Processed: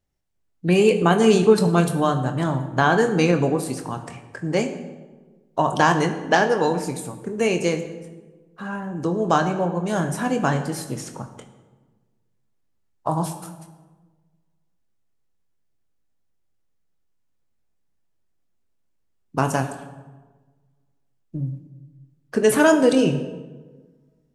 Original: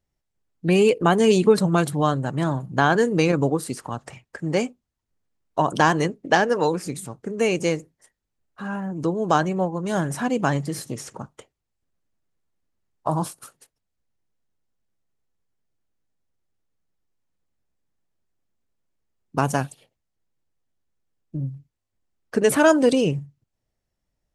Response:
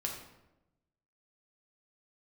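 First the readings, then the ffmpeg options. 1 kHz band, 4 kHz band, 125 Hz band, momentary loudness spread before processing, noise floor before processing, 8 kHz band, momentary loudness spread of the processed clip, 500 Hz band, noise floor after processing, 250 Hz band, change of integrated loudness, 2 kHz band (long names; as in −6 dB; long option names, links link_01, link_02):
+1.0 dB, +1.0 dB, +1.0 dB, 16 LU, −81 dBFS, +1.0 dB, 19 LU, +1.0 dB, −68 dBFS, +1.5 dB, +1.0 dB, +1.0 dB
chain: -filter_complex "[0:a]asplit=2[link_01][link_02];[1:a]atrim=start_sample=2205,asetrate=29106,aresample=44100,adelay=23[link_03];[link_02][link_03]afir=irnorm=-1:irlink=0,volume=-10.5dB[link_04];[link_01][link_04]amix=inputs=2:normalize=0"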